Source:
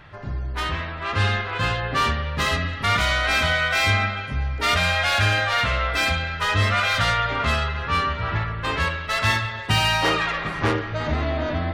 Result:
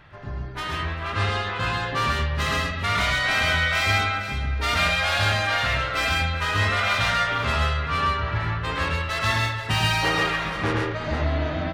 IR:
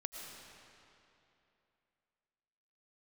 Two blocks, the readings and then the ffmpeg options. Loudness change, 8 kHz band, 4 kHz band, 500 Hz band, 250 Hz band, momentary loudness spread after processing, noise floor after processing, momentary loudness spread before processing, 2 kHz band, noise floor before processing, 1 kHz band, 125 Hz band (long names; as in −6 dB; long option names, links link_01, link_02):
−1.0 dB, −1.5 dB, −1.5 dB, −1.5 dB, −1.5 dB, 6 LU, −31 dBFS, 7 LU, −1.0 dB, −32 dBFS, −1.0 dB, −1.5 dB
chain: -af "aecho=1:1:108|133|166|392|479:0.531|0.708|0.141|0.1|0.266,volume=-4dB"